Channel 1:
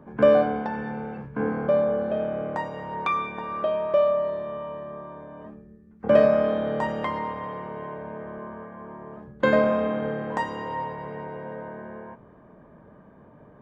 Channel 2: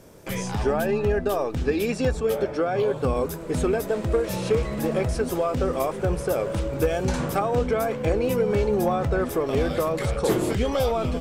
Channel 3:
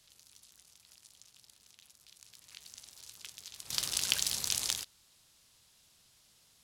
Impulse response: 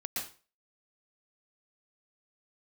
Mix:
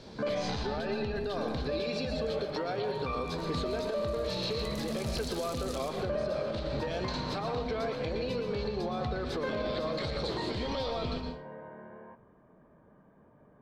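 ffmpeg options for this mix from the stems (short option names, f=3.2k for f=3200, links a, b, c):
-filter_complex "[0:a]flanger=delay=1.7:depth=6.1:regen=-69:speed=1.8:shape=triangular,volume=-5.5dB,asplit=2[a][b];[b]volume=-18.5dB[c];[1:a]acompressor=threshold=-28dB:ratio=6,lowpass=f=4.2k:t=q:w=7.2,volume=-4.5dB,asplit=2[d][e];[e]volume=-4.5dB[f];[2:a]agate=range=-33dB:threshold=-56dB:ratio=3:detection=peak,alimiter=limit=-21dB:level=0:latency=1:release=178,adelay=1050,volume=-8dB,asplit=2[g][h];[h]volume=-7.5dB[i];[3:a]atrim=start_sample=2205[j];[c][f][i]amix=inputs=3:normalize=0[k];[k][j]afir=irnorm=-1:irlink=0[l];[a][d][g][l]amix=inputs=4:normalize=0,alimiter=limit=-24dB:level=0:latency=1:release=130"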